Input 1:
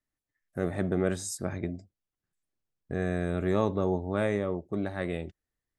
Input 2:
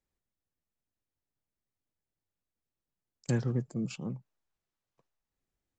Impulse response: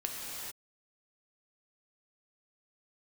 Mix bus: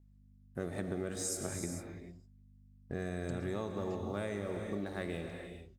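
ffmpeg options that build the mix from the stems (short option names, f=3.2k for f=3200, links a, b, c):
-filter_complex "[0:a]aeval=exprs='sgn(val(0))*max(abs(val(0))-0.00126,0)':c=same,aeval=exprs='val(0)+0.00158*(sin(2*PI*50*n/s)+sin(2*PI*2*50*n/s)/2+sin(2*PI*3*50*n/s)/3+sin(2*PI*4*50*n/s)/4+sin(2*PI*5*50*n/s)/5)':c=same,adynamicequalizer=threshold=0.00251:dfrequency=3400:dqfactor=0.7:tfrequency=3400:tqfactor=0.7:attack=5:release=100:ratio=0.375:range=4:mode=boostabove:tftype=highshelf,volume=-8.5dB,asplit=4[a][b][c][d];[b]volume=-3.5dB[e];[c]volume=-22.5dB[f];[1:a]volume=-3dB[g];[d]apad=whole_len=255272[h];[g][h]sidechaincompress=threshold=-40dB:ratio=8:attack=16:release=390[i];[2:a]atrim=start_sample=2205[j];[e][j]afir=irnorm=-1:irlink=0[k];[f]aecho=0:1:250|500|750:1|0.21|0.0441[l];[a][i][k][l]amix=inputs=4:normalize=0,acompressor=threshold=-33dB:ratio=6"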